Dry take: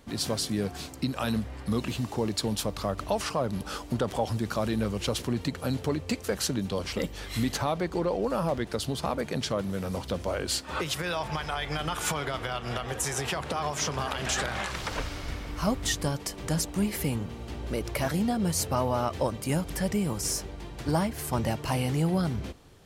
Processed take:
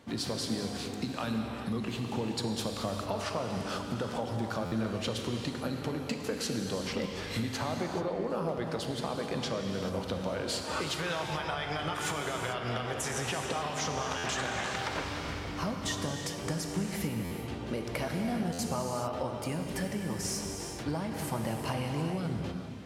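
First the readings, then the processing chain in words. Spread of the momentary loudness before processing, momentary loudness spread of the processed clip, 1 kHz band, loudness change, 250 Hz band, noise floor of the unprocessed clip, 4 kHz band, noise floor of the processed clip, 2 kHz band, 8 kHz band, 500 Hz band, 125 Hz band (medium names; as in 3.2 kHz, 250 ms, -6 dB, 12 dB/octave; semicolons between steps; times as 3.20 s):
6 LU, 3 LU, -3.0 dB, -4.0 dB, -4.0 dB, -42 dBFS, -3.0 dB, -39 dBFS, -2.0 dB, -5.5 dB, -3.5 dB, -5.0 dB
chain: high-pass 100 Hz 12 dB/octave; treble shelf 8.4 kHz -10.5 dB; compression, threshold -31 dBFS, peak gain reduction 10 dB; gated-style reverb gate 460 ms flat, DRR 2.5 dB; buffer glitch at 4.65/14.17/17.24/18.52 s, samples 512, times 5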